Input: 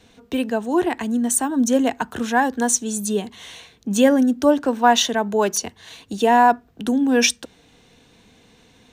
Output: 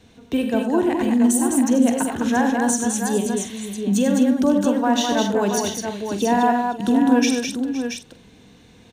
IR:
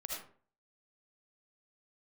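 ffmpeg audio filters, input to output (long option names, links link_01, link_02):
-filter_complex "[0:a]equalizer=frequency=130:width=0.39:gain=6,alimiter=limit=-10dB:level=0:latency=1:release=430,asplit=2[link_01][link_02];[link_02]adelay=45,volume=-11.5dB[link_03];[link_01][link_03]amix=inputs=2:normalize=0,aecho=1:1:79|96|207|515|679:0.251|0.316|0.596|0.158|0.447,volume=-2dB"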